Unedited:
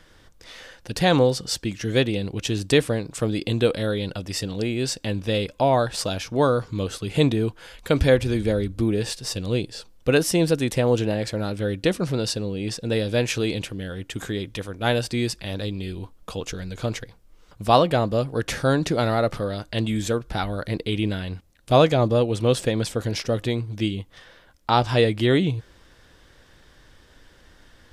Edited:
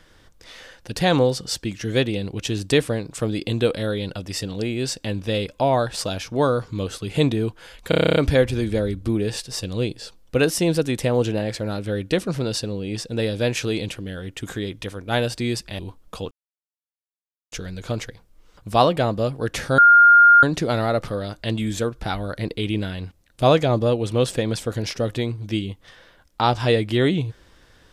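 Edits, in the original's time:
7.89 stutter 0.03 s, 10 plays
15.52–15.94 cut
16.46 insert silence 1.21 s
18.72 add tone 1410 Hz -7.5 dBFS 0.65 s

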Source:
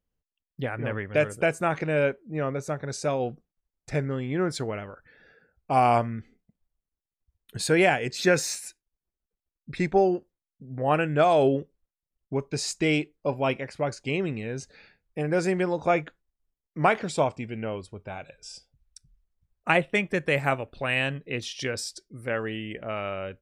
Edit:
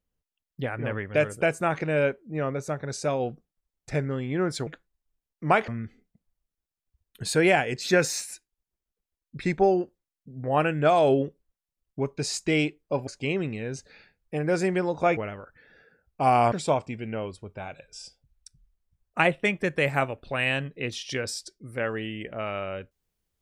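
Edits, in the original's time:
4.67–6.02 swap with 16.01–17.02
13.41–13.91 cut

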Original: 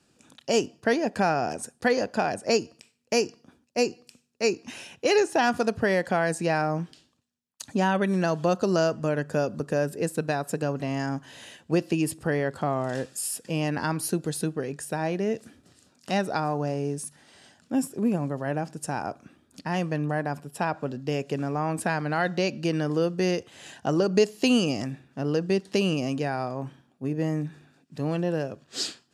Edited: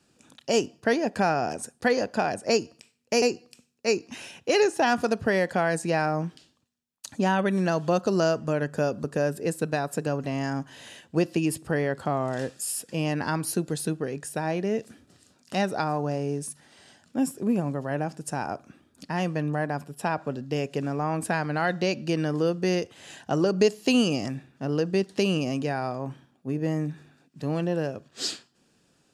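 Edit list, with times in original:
3.22–3.78 cut

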